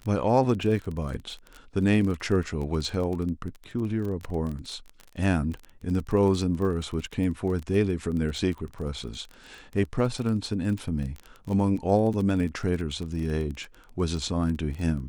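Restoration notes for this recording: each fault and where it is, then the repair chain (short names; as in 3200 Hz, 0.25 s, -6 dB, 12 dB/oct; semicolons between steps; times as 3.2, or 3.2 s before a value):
crackle 22/s -31 dBFS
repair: de-click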